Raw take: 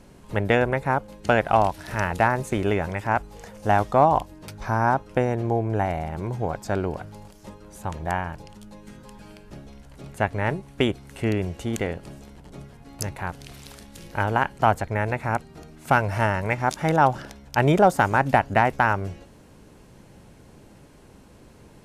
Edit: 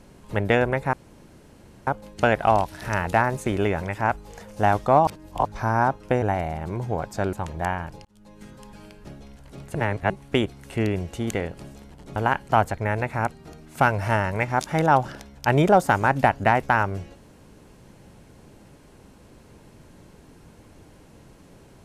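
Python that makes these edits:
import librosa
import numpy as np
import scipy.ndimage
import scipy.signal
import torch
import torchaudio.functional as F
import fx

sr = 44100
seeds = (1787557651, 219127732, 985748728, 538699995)

y = fx.edit(x, sr, fx.insert_room_tone(at_s=0.93, length_s=0.94),
    fx.reverse_span(start_s=4.13, length_s=0.38),
    fx.cut(start_s=5.28, length_s=0.45),
    fx.cut(start_s=6.84, length_s=0.95),
    fx.fade_in_span(start_s=8.51, length_s=0.4),
    fx.reverse_span(start_s=10.21, length_s=0.35),
    fx.cut(start_s=12.62, length_s=1.64), tone=tone)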